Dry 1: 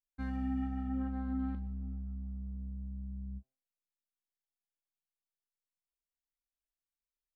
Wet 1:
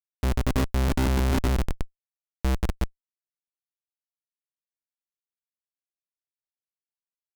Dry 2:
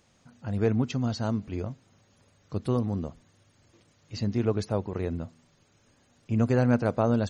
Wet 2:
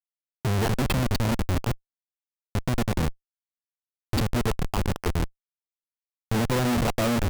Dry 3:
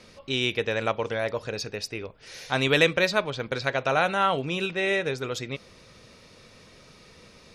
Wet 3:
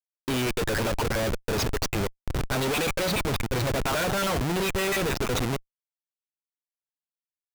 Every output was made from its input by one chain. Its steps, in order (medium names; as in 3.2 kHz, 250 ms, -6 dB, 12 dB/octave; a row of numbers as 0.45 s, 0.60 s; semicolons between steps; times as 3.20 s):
random holes in the spectrogram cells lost 32%; Schmitt trigger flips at -35.5 dBFS; normalise loudness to -27 LUFS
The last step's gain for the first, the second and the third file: +20.5 dB, +8.0 dB, +4.5 dB